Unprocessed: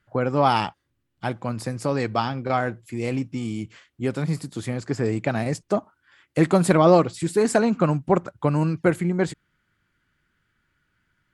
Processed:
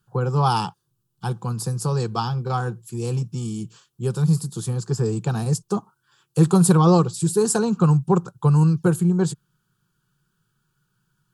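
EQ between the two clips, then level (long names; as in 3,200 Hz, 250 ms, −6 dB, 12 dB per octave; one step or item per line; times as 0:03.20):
parametric band 130 Hz +9.5 dB 1.1 octaves
high-shelf EQ 5,200 Hz +12 dB
phaser with its sweep stopped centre 410 Hz, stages 8
0.0 dB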